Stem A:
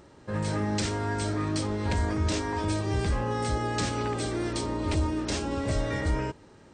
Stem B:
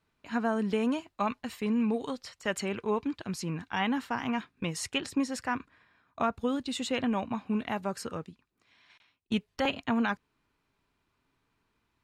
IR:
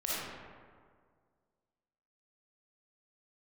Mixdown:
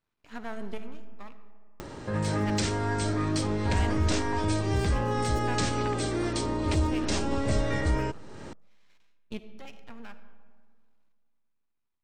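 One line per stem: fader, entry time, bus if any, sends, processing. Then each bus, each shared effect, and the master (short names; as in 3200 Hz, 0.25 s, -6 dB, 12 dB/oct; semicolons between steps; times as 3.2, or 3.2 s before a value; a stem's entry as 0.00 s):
+1.0 dB, 1.80 s, no send, upward compressor, threshold -31 dBFS
-6.0 dB, 0.00 s, muted 1.34–2.19, send -15 dB, half-wave rectifier; chopper 0.58 Hz, depth 65%, duty 45%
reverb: on, RT60 1.9 s, pre-delay 15 ms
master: dry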